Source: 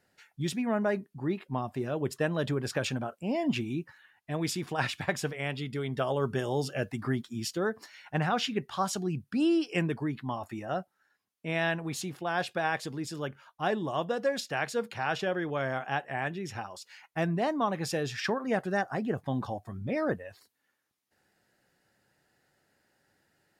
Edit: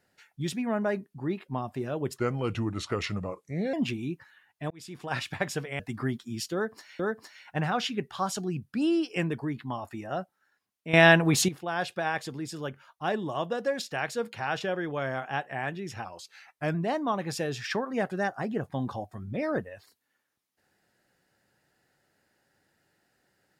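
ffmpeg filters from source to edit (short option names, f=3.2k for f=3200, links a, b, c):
-filter_complex "[0:a]asplit=10[a][b][c][d][e][f][g][h][i][j];[a]atrim=end=2.194[k];[b]atrim=start=2.19:end=3.41,asetpts=PTS-STARTPTS,asetrate=34839,aresample=44100[l];[c]atrim=start=3.406:end=4.38,asetpts=PTS-STARTPTS,afade=t=out:st=0.97:d=0.004:c=hsin[m];[d]atrim=start=4.38:end=5.472,asetpts=PTS-STARTPTS,afade=t=in:d=0.54[n];[e]atrim=start=6.838:end=8.042[o];[f]atrim=start=7.578:end=11.522[p];[g]atrim=start=11.518:end=12.072,asetpts=PTS-STARTPTS,volume=12dB[q];[h]atrim=start=12.068:end=16.634[r];[i]atrim=start=16.63:end=17.28,asetpts=PTS-STARTPTS,asetrate=41013,aresample=44100[s];[j]atrim=start=17.276[t];[k][l]acrossfade=d=0.004:c1=hsin:c2=hsin[u];[m][n]concat=n=2:v=0:a=1[v];[u][v]acrossfade=d=0.004:c1=hsin:c2=hsin[w];[w][o]acrossfade=d=0.004:c1=hsin:c2=hsin[x];[x][p]acrossfade=d=0.004:c1=hsin:c2=hsin[y];[y][q]acrossfade=d=0.004:c1=hsin:c2=hsin[z];[z][r]acrossfade=d=0.004:c1=hsin:c2=hsin[aa];[aa][s]acrossfade=d=0.004:c1=hsin:c2=hsin[ab];[ab][t]acrossfade=d=0.004:c1=hsin:c2=hsin"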